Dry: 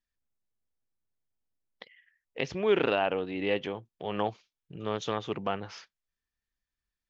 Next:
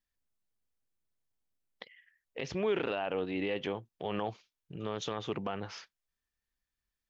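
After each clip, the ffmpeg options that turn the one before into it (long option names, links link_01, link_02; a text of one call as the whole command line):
ffmpeg -i in.wav -af "alimiter=limit=-22.5dB:level=0:latency=1:release=36" out.wav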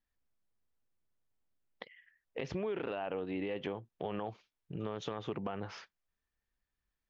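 ffmpeg -i in.wav -af "highshelf=frequency=3400:gain=-12,acompressor=threshold=-37dB:ratio=5,volume=3dB" out.wav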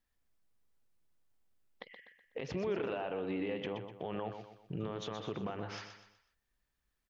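ffmpeg -i in.wav -filter_complex "[0:a]alimiter=level_in=7.5dB:limit=-24dB:level=0:latency=1:release=152,volume=-7.5dB,asplit=2[link_01][link_02];[link_02]aecho=0:1:124|248|372|496:0.398|0.155|0.0606|0.0236[link_03];[link_01][link_03]amix=inputs=2:normalize=0,volume=3.5dB" out.wav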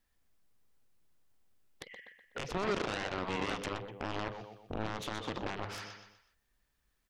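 ffmpeg -i in.wav -af "aeval=exprs='0.0562*(cos(1*acos(clip(val(0)/0.0562,-1,1)))-cos(1*PI/2))+0.0224*(cos(7*acos(clip(val(0)/0.0562,-1,1)))-cos(7*PI/2))':channel_layout=same" out.wav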